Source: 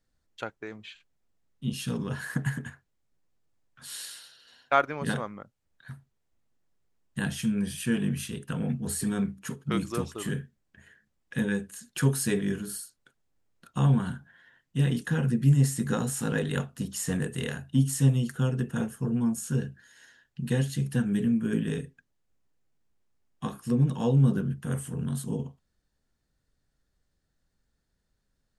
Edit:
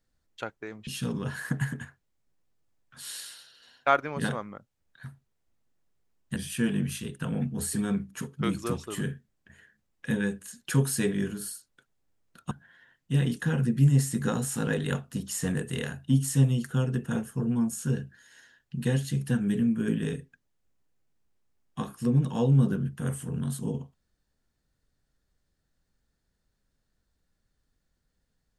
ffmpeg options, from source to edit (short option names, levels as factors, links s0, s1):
-filter_complex "[0:a]asplit=4[s0][s1][s2][s3];[s0]atrim=end=0.872[s4];[s1]atrim=start=1.718:end=7.212[s5];[s2]atrim=start=7.638:end=13.792[s6];[s3]atrim=start=14.158[s7];[s4][s5]acrossfade=d=0.004:c1=hsin:c2=hsin[s8];[s8][s6]acrossfade=d=0.004:c1=hsin:c2=hsin[s9];[s9][s7]acrossfade=d=0.004:c1=hsin:c2=hsin"